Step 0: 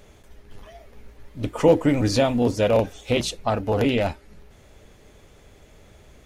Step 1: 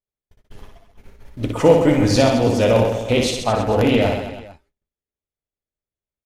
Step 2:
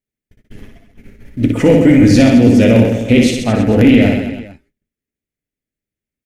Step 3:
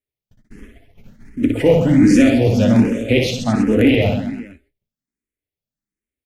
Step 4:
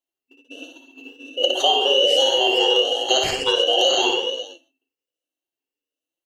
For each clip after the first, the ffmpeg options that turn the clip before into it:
-filter_complex "[0:a]agate=range=0.00316:threshold=0.01:ratio=16:detection=peak,asplit=2[s0][s1];[s1]aecho=0:1:60|132|218.4|322.1|446.5:0.631|0.398|0.251|0.158|0.1[s2];[s0][s2]amix=inputs=2:normalize=0,volume=1.41"
-af "equalizer=f=125:t=o:w=1:g=4,equalizer=f=250:t=o:w=1:g=11,equalizer=f=1000:t=o:w=1:g=-12,equalizer=f=2000:t=o:w=1:g=9,equalizer=f=4000:t=o:w=1:g=-4,apsyclip=1.78,volume=0.794"
-filter_complex "[0:a]asplit=2[s0][s1];[s1]afreqshift=1.3[s2];[s0][s2]amix=inputs=2:normalize=1,volume=0.891"
-af "afftfilt=real='real(if(lt(b,272),68*(eq(floor(b/68),0)*2+eq(floor(b/68),1)*0+eq(floor(b/68),2)*3+eq(floor(b/68),3)*1)+mod(b,68),b),0)':imag='imag(if(lt(b,272),68*(eq(floor(b/68),0)*2+eq(floor(b/68),1)*0+eq(floor(b/68),2)*3+eq(floor(b/68),3)*1)+mod(b,68),b),0)':win_size=2048:overlap=0.75,aeval=exprs='val(0)*sin(2*PI*1200*n/s)':c=same,acompressor=threshold=0.158:ratio=4,volume=1.26"

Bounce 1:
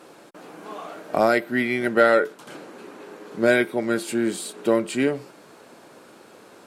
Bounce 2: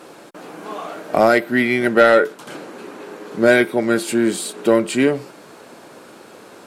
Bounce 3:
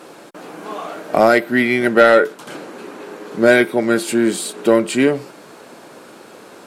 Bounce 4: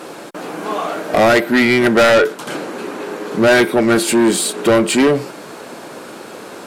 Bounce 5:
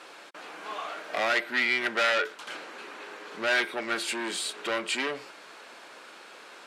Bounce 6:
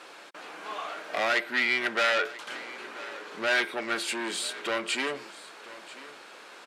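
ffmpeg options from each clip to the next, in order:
-af "acontrast=59"
-af "equalizer=f=81:t=o:w=0.73:g=-4.5,volume=1.19"
-af "asoftclip=type=tanh:threshold=0.178,volume=2.37"
-af "bandpass=f=2600:t=q:w=0.73:csg=0,volume=0.398"
-af "aecho=1:1:988:0.126"

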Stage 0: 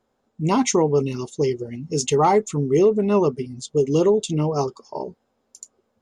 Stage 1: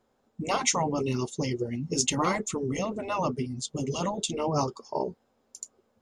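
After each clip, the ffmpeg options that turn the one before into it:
-af "afftfilt=real='re*lt(hypot(re,im),0.501)':imag='im*lt(hypot(re,im),0.501)':win_size=1024:overlap=0.75"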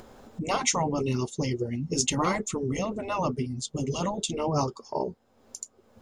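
-af "lowshelf=f=75:g=9,acompressor=mode=upward:threshold=0.0224:ratio=2.5"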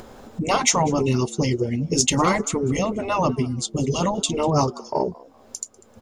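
-filter_complex "[0:a]acontrast=78,asplit=3[s0][s1][s2];[s1]adelay=195,afreqshift=95,volume=0.0708[s3];[s2]adelay=390,afreqshift=190,volume=0.0211[s4];[s0][s3][s4]amix=inputs=3:normalize=0"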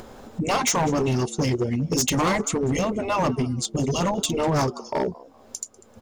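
-af "asoftclip=type=hard:threshold=0.126"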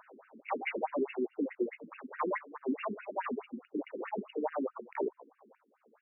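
-af "afftfilt=real='re*between(b*sr/1024,280*pow(2100/280,0.5+0.5*sin(2*PI*4.7*pts/sr))/1.41,280*pow(2100/280,0.5+0.5*sin(2*PI*4.7*pts/sr))*1.41)':imag='im*between(b*sr/1024,280*pow(2100/280,0.5+0.5*sin(2*PI*4.7*pts/sr))/1.41,280*pow(2100/280,0.5+0.5*sin(2*PI*4.7*pts/sr))*1.41)':win_size=1024:overlap=0.75,volume=0.596"

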